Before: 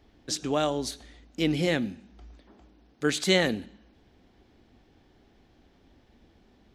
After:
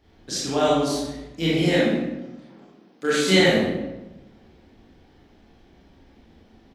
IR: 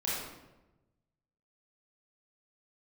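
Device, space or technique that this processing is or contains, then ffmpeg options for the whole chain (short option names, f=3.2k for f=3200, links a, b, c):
bathroom: -filter_complex "[0:a]asettb=1/sr,asplit=3[a][b][c];[a]atrim=end=1.584[d];[b]atrim=start=1.58:end=3.37,asetpts=PTS-STARTPTS,afade=t=in:d=0.004:c=qsin,afade=t=out:st=1.786:d=0.004:c=qsin,highpass=f=170:w=0.5412,highpass=f=170:w=1.3066[e];[c]atrim=start=3.366[f];[d][e]acrossfade=d=0.004:c1=hsin:c2=qsin[g];[g][f]acrossfade=d=0.004:c1=qsin:c2=hsin[h];[1:a]atrim=start_sample=2205[i];[h][i]afir=irnorm=-1:irlink=0,asplit=2[j][k];[k]adelay=37,volume=-11dB[l];[j][l]amix=inputs=2:normalize=0"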